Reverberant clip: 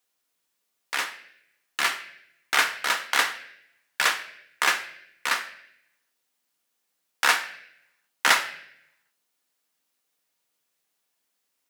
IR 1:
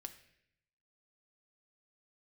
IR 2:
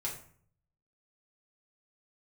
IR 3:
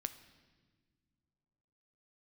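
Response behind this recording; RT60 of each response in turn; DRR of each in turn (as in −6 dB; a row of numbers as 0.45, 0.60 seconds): 1; 0.70 s, 0.55 s, non-exponential decay; 6.5, −4.5, 10.5 decibels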